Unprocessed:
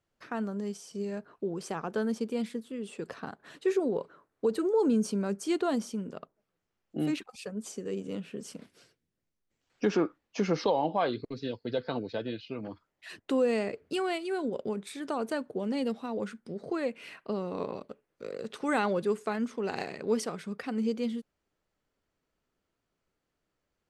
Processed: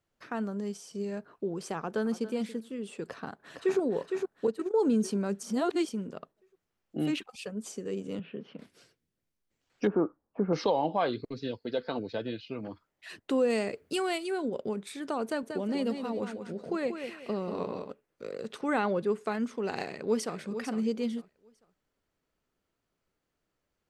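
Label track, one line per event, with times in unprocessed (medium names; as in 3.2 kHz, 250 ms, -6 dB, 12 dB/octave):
1.770000	2.320000	echo throw 280 ms, feedback 20%, level -14.5 dB
3.070000	3.790000	echo throw 460 ms, feedback 45%, level -5 dB
4.470000	4.910000	gate -28 dBFS, range -13 dB
5.430000	5.890000	reverse
7.050000	7.550000	peaking EQ 3 kHz +6.5 dB 0.41 oct
8.190000	8.590000	elliptic band-pass 130–3200 Hz
9.870000	10.530000	low-pass 1.2 kHz 24 dB/octave
11.570000	11.990000	peaking EQ 120 Hz -10 dB 0.61 oct
13.500000	14.310000	treble shelf 5.2 kHz +9 dB
15.240000	17.910000	feedback delay 187 ms, feedback 31%, level -7.5 dB
18.610000	19.250000	treble shelf 4.4 kHz -10 dB
19.830000	20.380000	echo throw 450 ms, feedback 25%, level -9.5 dB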